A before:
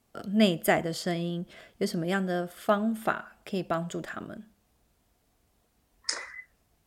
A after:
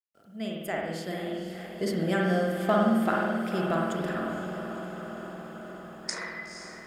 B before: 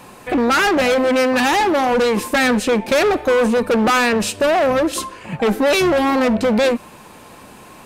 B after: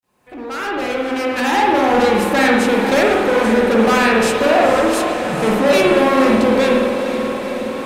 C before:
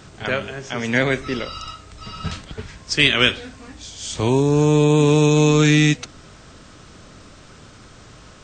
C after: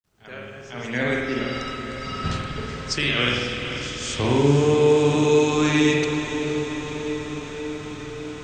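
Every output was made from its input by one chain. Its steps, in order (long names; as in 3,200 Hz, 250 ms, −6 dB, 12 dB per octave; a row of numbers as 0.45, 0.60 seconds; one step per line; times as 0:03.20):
fade in at the beginning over 2.02 s
brickwall limiter −12 dBFS
spring reverb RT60 1.1 s, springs 49 ms, chirp 65 ms, DRR −1.5 dB
bit reduction 12 bits
on a send: feedback delay with all-pass diffusion 494 ms, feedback 72%, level −9 dB
on the sum: level −1.5 dB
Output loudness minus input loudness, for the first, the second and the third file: 0.0, +1.5, −5.0 LU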